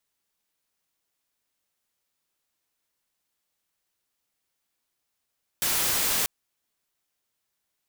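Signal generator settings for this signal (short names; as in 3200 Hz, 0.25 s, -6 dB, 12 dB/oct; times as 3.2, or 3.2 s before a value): noise white, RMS -25 dBFS 0.64 s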